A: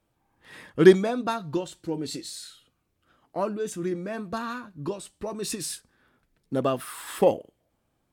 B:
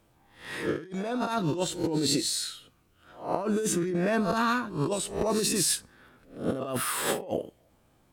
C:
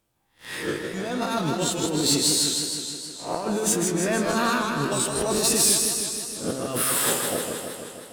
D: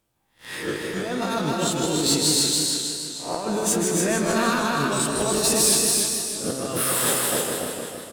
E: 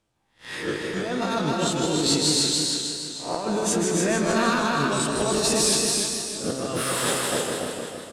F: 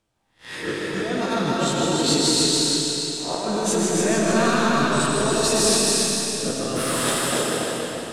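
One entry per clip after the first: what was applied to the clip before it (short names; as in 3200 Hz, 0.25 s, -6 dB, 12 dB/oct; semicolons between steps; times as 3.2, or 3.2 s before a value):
spectral swells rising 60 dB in 0.40 s; negative-ratio compressor -32 dBFS, ratio -1; gain +2 dB
high shelf 3100 Hz +9 dB; sample leveller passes 2; warbling echo 0.157 s, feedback 69%, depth 124 cents, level -4.5 dB; gain -7 dB
loudspeakers at several distances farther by 74 m -12 dB, 97 m -4 dB
LPF 7800 Hz 12 dB/oct
digital reverb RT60 2.8 s, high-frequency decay 0.9×, pre-delay 45 ms, DRR 0.5 dB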